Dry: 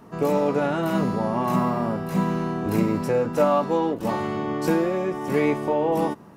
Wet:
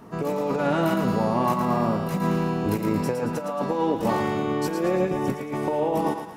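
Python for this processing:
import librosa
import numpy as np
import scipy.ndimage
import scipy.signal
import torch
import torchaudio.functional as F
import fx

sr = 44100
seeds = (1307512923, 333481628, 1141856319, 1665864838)

p1 = fx.low_shelf(x, sr, hz=280.0, db=7.5, at=(4.96, 5.53))
p2 = fx.over_compress(p1, sr, threshold_db=-23.0, ratio=-0.5)
y = p2 + fx.echo_thinned(p2, sr, ms=112, feedback_pct=50, hz=500.0, wet_db=-6, dry=0)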